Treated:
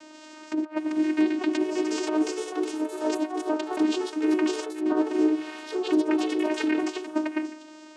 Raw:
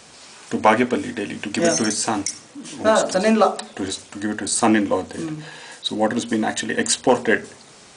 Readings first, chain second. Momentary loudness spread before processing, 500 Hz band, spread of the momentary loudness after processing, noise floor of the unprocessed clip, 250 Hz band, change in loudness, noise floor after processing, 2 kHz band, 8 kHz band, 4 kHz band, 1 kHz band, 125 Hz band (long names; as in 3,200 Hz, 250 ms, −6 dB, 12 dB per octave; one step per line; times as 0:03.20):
12 LU, −7.5 dB, 8 LU, −46 dBFS, −1.5 dB, −6.0 dB, −47 dBFS, −11.0 dB, −17.5 dB, −10.5 dB, −12.5 dB, below −20 dB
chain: stylus tracing distortion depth 0.17 ms
notch filter 520 Hz, Q 15
compressor whose output falls as the input rises −24 dBFS, ratio −0.5
channel vocoder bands 8, saw 309 Hz
delay with pitch and tempo change per echo 769 ms, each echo +3 semitones, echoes 2, each echo −6 dB